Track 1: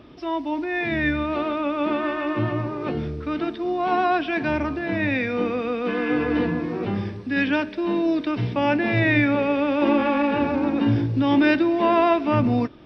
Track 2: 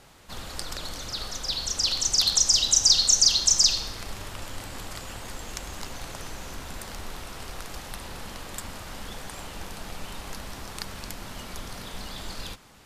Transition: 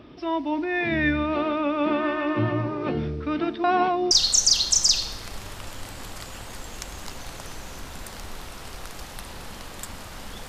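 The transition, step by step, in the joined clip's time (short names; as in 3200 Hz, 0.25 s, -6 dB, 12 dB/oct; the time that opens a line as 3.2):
track 1
3.64–4.11 reverse
4.11 switch to track 2 from 2.86 s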